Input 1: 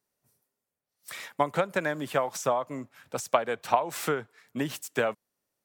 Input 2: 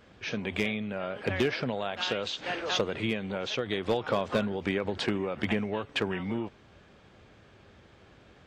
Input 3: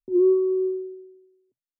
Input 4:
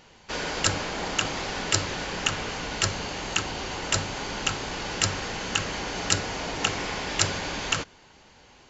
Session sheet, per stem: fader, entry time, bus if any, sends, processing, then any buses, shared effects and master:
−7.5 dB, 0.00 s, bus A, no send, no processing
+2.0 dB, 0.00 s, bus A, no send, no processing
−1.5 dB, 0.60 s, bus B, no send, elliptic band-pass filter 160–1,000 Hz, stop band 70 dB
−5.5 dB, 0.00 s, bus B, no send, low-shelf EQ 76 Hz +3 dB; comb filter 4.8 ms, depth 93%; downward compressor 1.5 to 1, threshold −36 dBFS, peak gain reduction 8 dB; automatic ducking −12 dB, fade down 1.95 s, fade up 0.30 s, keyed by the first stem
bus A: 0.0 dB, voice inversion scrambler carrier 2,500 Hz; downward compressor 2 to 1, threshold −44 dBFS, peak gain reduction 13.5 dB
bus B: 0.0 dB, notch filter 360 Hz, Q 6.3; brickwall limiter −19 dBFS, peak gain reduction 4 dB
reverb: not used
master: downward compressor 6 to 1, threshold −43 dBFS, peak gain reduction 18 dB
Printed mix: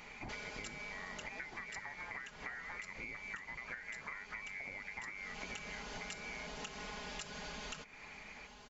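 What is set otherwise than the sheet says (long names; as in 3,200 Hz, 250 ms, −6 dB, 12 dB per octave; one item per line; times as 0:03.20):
stem 1 −7.5 dB → +2.0 dB
stem 3: muted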